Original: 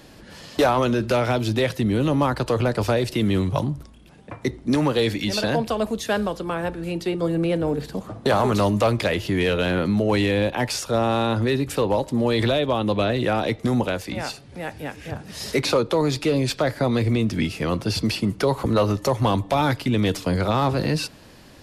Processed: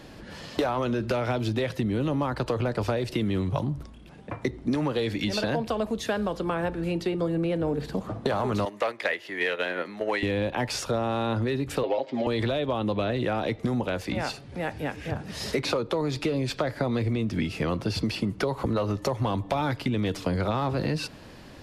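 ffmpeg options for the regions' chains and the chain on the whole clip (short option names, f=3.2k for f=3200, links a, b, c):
-filter_complex "[0:a]asettb=1/sr,asplit=3[a][b][c];[a]atrim=end=8.654[d];[b]atrim=start=8.65:end=10.23,asetpts=PTS-STARTPTS,afade=t=in:d=0.004:c=qsin,afade=t=out:st=1.576:d=0.004:c=qsin,highpass=450,agate=range=-9dB:threshold=-26dB:ratio=16:release=100:detection=peak,equalizer=f=1.9k:t=o:w=0.49:g=9.5[e];[c]atrim=start=10.226[f];[d][e]acrossfade=d=0.004:c1=hsin:c2=qsin[g];[g][f]acrossfade=d=0.004:c1=qsin:c2=hsin,asettb=1/sr,asplit=3[h][i][j];[h]atrim=end=11.834[k];[i]atrim=start=11.83:end=12.27,asetpts=PTS-STARTPTS,afade=t=in:d=0.004:c=qsin,afade=t=out:st=0.436:d=0.004:c=qsin,acrossover=split=3800[l][m];[m]acompressor=threshold=-51dB:ratio=4:attack=1:release=60[n];[l][n]amix=inputs=2:normalize=0,highpass=350,equalizer=f=660:t=q:w=4:g=7,equalizer=f=1k:t=q:w=4:g=-9,equalizer=f=2.2k:t=q:w=4:g=9,equalizer=f=3.2k:t=q:w=4:g=6,equalizer=f=4.8k:t=q:w=4:g=5,lowpass=f=6.5k:w=0.5412,lowpass=f=6.5k:w=1.3066,aecho=1:1:7.4:0.81,atrim=end_sample=19404[o];[j]atrim=start=12.266[p];[k][o]acrossfade=d=0.004:c1=hsin:c2=qsin[q];[q][p]acrossfade=d=0.004:c1=qsin:c2=hsin,highshelf=f=5.7k:g=-9,acompressor=threshold=-25dB:ratio=6,volume=1.5dB"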